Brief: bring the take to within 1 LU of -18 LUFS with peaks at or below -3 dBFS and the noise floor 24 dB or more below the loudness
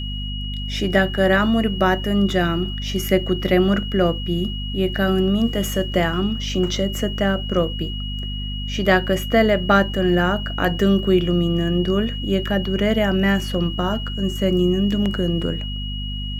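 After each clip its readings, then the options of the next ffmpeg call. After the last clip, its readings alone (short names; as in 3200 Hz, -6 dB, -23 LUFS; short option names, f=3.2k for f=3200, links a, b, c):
hum 50 Hz; harmonics up to 250 Hz; hum level -25 dBFS; steady tone 2900 Hz; tone level -31 dBFS; loudness -20.5 LUFS; peak -3.5 dBFS; loudness target -18.0 LUFS
-> -af "bandreject=f=50:t=h:w=4,bandreject=f=100:t=h:w=4,bandreject=f=150:t=h:w=4,bandreject=f=200:t=h:w=4,bandreject=f=250:t=h:w=4"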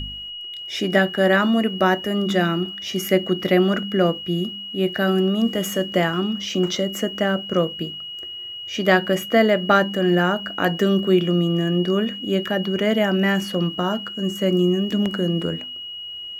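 hum none; steady tone 2900 Hz; tone level -31 dBFS
-> -af "bandreject=f=2.9k:w=30"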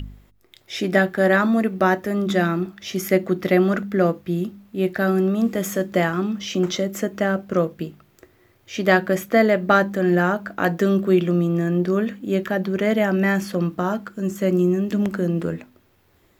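steady tone none; loudness -21.0 LUFS; peak -3.5 dBFS; loudness target -18.0 LUFS
-> -af "volume=3dB,alimiter=limit=-3dB:level=0:latency=1"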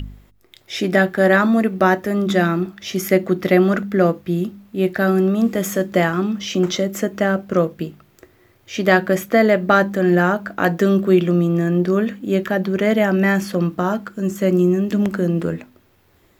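loudness -18.0 LUFS; peak -3.0 dBFS; noise floor -56 dBFS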